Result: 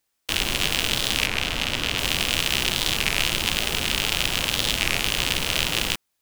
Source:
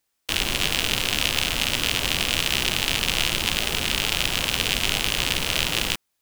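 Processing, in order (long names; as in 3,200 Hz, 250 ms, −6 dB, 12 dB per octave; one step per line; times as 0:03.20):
0:01.28–0:01.98: high-shelf EQ 6,300 Hz −10 dB
wow of a warped record 33 1/3 rpm, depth 250 cents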